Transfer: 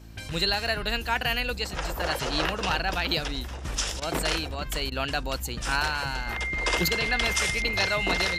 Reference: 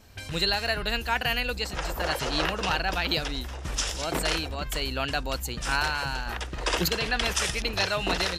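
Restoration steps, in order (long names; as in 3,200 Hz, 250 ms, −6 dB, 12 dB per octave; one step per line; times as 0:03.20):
clipped peaks rebuilt −13.5 dBFS
hum removal 55.5 Hz, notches 6
notch filter 2,100 Hz, Q 30
repair the gap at 0:04.00/0:04.90, 17 ms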